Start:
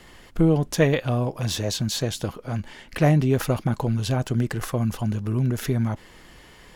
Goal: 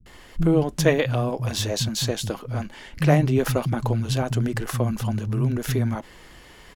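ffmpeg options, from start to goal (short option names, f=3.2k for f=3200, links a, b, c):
-filter_complex "[0:a]acrossover=split=190[a][b];[b]adelay=60[c];[a][c]amix=inputs=2:normalize=0,volume=1.5dB"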